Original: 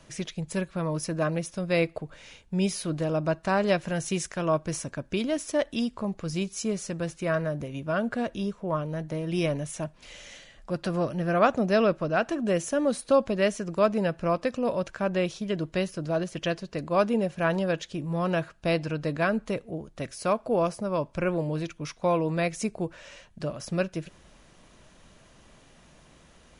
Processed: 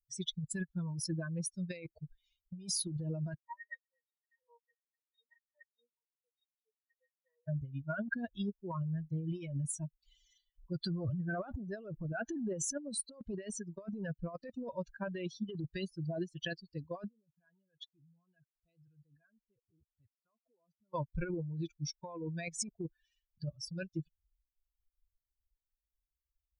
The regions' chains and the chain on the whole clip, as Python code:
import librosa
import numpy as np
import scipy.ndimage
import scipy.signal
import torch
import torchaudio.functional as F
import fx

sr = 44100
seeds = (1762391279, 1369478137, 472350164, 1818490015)

y = fx.chain(x, sr, fx.ladder_highpass(hz=420.0, resonance_pct=40),
    fx.peak_eq(hz=1900.0, db=12.0, octaves=0.68),
    fx.octave_resonator(note='A#', decay_s=0.1), at=(3.38, 7.48))
y = fx.chain(y, sr, fx.high_shelf(hz=2800.0, db=-4.0),
    fx.transient(attack_db=-8, sustain_db=6), at=(11.03, 12.94))
y = fx.chain(y, sr, fx.air_absorb(metres=75.0),
    fx.level_steps(step_db=21), at=(17.08, 20.94))
y = fx.bin_expand(y, sr, power=3.0)
y = fx.over_compress(y, sr, threshold_db=-42.0, ratio=-1.0)
y = F.gain(torch.from_numpy(y), 2.5).numpy()